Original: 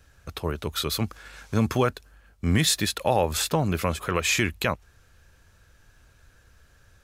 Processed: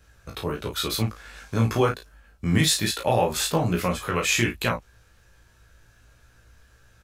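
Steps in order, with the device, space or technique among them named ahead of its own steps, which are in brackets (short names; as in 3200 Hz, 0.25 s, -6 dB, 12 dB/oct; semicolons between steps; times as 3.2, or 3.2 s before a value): double-tracked vocal (doubler 34 ms -6 dB; chorus 1.3 Hz, delay 16.5 ms, depth 2.2 ms); gain +3 dB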